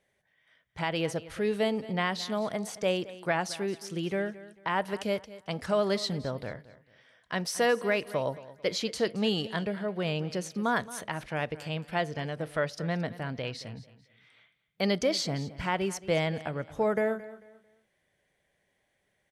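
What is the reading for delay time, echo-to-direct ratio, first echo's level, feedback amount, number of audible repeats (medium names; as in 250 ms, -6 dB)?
222 ms, -16.5 dB, -17.0 dB, 29%, 2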